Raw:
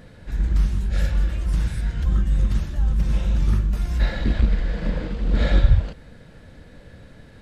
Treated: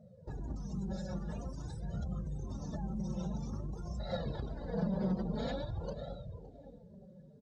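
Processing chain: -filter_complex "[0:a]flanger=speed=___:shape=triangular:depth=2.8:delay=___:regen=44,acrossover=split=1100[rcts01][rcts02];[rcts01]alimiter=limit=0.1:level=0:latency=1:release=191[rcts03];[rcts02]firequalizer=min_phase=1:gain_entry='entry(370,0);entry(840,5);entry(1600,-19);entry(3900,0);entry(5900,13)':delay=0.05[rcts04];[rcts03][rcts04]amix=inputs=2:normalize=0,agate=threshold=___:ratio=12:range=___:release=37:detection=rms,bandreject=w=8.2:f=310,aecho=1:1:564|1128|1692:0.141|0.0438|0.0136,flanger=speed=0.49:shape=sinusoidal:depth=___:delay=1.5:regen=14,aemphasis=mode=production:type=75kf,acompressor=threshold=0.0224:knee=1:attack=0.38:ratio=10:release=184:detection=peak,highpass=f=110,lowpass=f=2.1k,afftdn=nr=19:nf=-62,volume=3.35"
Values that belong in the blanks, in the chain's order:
1, 4.8, 0.00794, 0.316, 3.9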